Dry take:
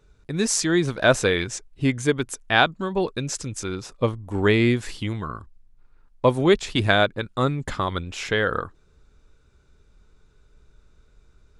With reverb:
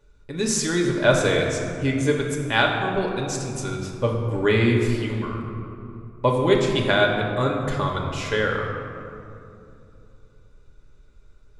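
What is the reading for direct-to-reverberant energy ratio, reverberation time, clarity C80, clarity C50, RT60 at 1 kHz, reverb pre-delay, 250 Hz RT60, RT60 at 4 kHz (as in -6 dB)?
-0.5 dB, 2.8 s, 4.5 dB, 3.5 dB, 2.6 s, 4 ms, 3.4 s, 1.3 s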